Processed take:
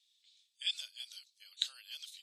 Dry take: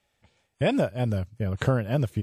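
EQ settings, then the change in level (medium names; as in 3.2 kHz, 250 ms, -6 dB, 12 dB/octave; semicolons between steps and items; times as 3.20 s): ladder band-pass 4.1 kHz, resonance 70%; differentiator; +16.0 dB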